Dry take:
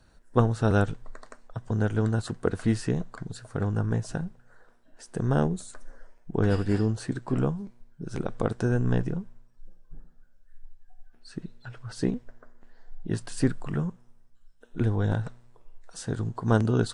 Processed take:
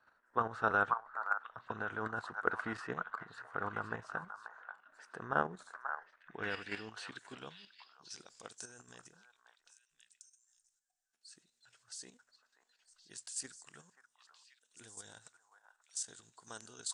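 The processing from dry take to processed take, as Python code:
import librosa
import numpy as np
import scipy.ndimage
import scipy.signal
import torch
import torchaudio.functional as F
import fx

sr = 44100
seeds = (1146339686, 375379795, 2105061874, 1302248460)

y = fx.echo_stepped(x, sr, ms=535, hz=1100.0, octaves=1.4, feedback_pct=70, wet_db=-4.0)
y = fx.filter_sweep_bandpass(y, sr, from_hz=1300.0, to_hz=7300.0, start_s=5.6, end_s=8.66, q=2.3)
y = fx.level_steps(y, sr, step_db=9)
y = y * librosa.db_to_amplitude(7.5)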